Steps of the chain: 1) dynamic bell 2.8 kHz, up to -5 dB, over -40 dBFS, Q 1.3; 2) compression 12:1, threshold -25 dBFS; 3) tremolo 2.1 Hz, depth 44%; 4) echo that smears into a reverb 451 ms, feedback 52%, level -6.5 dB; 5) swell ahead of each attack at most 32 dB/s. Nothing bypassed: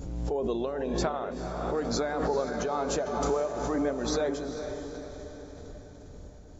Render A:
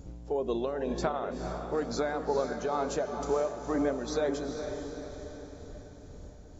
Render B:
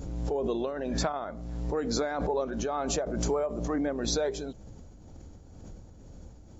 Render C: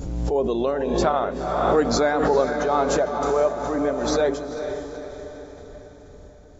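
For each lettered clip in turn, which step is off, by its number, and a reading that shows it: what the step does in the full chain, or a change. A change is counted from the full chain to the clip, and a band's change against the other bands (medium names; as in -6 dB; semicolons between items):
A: 5, 4 kHz band -3.0 dB; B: 4, momentary loudness spread change +4 LU; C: 2, mean gain reduction 4.0 dB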